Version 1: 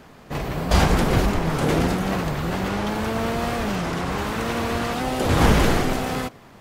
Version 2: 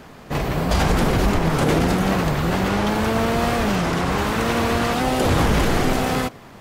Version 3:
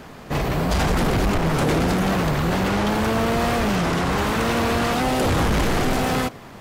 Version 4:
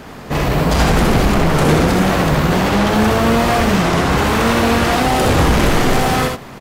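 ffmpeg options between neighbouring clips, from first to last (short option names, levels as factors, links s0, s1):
-af "alimiter=limit=0.211:level=0:latency=1:release=74,volume=1.68"
-af "asoftclip=type=tanh:threshold=0.141,volume=1.26"
-af "aecho=1:1:65|79:0.596|0.398,volume=1.78"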